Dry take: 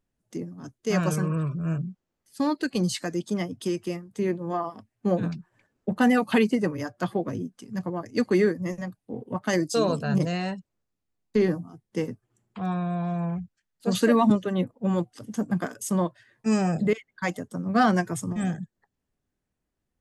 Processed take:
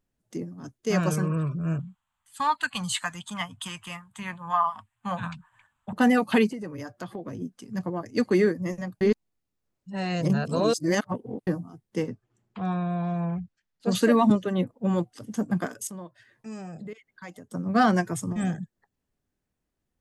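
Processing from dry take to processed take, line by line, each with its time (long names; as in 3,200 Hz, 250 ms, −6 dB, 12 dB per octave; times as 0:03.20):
0:01.79–0:05.93: drawn EQ curve 100 Hz 0 dB, 250 Hz −12 dB, 380 Hz −28 dB, 640 Hz −6 dB, 980 Hz +12 dB, 2,100 Hz +4 dB, 3,300 Hz +9 dB, 5,300 Hz −9 dB, 7,700 Hz +7 dB, 13,000 Hz −2 dB
0:06.47–0:07.42: downward compressor 4 to 1, threshold −33 dBFS
0:09.01–0:11.47: reverse
0:12.03–0:13.89: low-pass filter 6,100 Hz
0:15.87–0:17.51: downward compressor 2 to 1, threshold −49 dBFS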